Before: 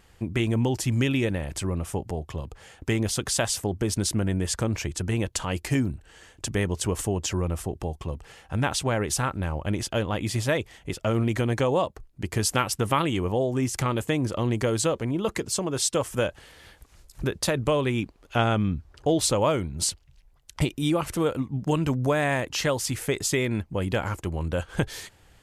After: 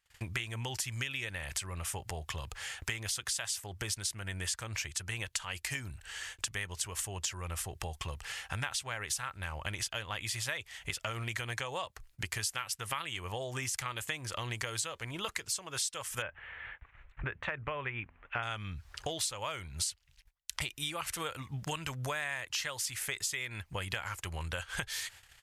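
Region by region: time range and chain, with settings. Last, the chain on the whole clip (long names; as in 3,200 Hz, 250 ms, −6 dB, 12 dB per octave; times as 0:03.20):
0:16.22–0:18.43: inverse Chebyshev low-pass filter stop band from 4,600 Hz + hum removal 83.59 Hz, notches 3
whole clip: noise gate −53 dBFS, range −29 dB; drawn EQ curve 110 Hz 0 dB, 250 Hz −12 dB, 1,800 Hz +13 dB; downward compressor 5 to 1, threshold −32 dBFS; level −3 dB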